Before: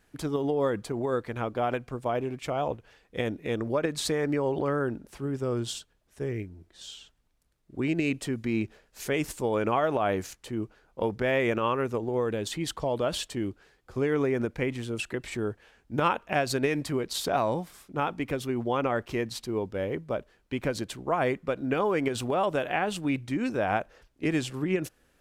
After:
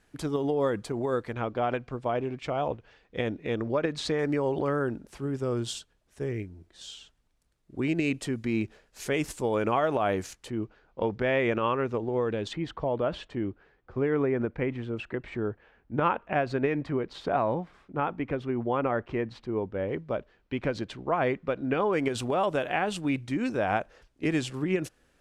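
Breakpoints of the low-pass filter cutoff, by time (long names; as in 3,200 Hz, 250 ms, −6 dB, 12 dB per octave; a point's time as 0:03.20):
11,000 Hz
from 0:01.33 4,900 Hz
from 0:04.19 11,000 Hz
from 0:10.50 4,200 Hz
from 0:12.53 2,100 Hz
from 0:19.89 3,900 Hz
from 0:21.93 10,000 Hz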